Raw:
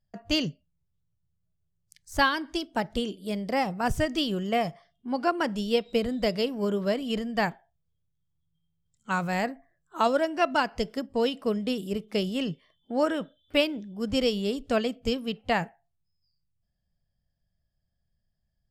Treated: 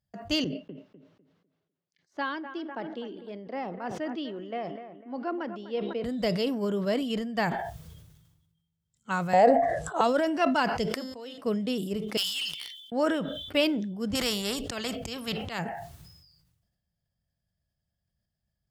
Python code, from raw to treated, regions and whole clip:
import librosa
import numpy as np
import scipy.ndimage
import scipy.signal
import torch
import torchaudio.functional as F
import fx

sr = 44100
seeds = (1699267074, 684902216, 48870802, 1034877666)

y = fx.chain(x, sr, fx.ladder_highpass(hz=230.0, resonance_pct=30),
    fx.air_absorb(metres=250.0),
    fx.echo_bbd(ms=250, stages=4096, feedback_pct=37, wet_db=-15), at=(0.44, 6.04))
y = fx.chain(y, sr, fx.lowpass(hz=10000.0, slope=24),
    fx.band_shelf(hz=610.0, db=14.0, octaves=1.1),
    fx.band_squash(depth_pct=40), at=(9.33, 10.01))
y = fx.chain(y, sr, fx.low_shelf(hz=290.0, db=-11.5),
    fx.comb_fb(f0_hz=260.0, decay_s=0.41, harmonics='all', damping=0.0, mix_pct=80), at=(10.94, 11.38))
y = fx.chain(y, sr, fx.cheby2_highpass(hz=1300.0, order=4, stop_db=40),
    fx.leveller(passes=3), at=(12.17, 12.92))
y = fx.chain(y, sr, fx.low_shelf(hz=130.0, db=10.5),
    fx.auto_swell(attack_ms=270.0),
    fx.spectral_comp(ratio=2.0), at=(14.15, 15.59))
y = scipy.signal.sosfilt(scipy.signal.butter(2, 51.0, 'highpass', fs=sr, output='sos'), y)
y = fx.notch(y, sr, hz=2400.0, q=28.0)
y = fx.sustainer(y, sr, db_per_s=44.0)
y = F.gain(torch.from_numpy(y), -2.0).numpy()